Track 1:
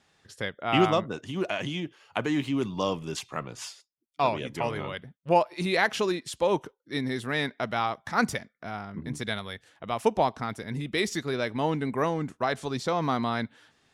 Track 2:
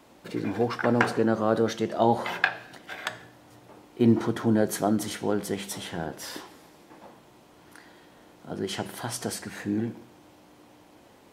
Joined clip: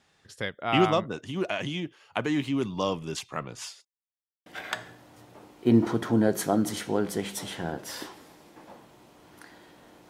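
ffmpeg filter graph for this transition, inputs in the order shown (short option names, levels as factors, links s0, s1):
-filter_complex "[0:a]apad=whole_dur=10.09,atrim=end=10.09,asplit=2[s0][s1];[s0]atrim=end=3.85,asetpts=PTS-STARTPTS,afade=t=out:st=3.846:d=0.004:c=hsin[s2];[s1]atrim=start=3.85:end=4.46,asetpts=PTS-STARTPTS,volume=0[s3];[1:a]atrim=start=2.8:end=8.43,asetpts=PTS-STARTPTS,afade=t=in:d=0.004:c=hsin[s4];[s2][s3][s4]concat=n=3:v=0:a=1"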